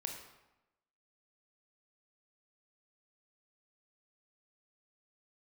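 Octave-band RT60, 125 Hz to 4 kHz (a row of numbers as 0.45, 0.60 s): 1.0, 1.0, 0.95, 0.95, 0.85, 0.70 s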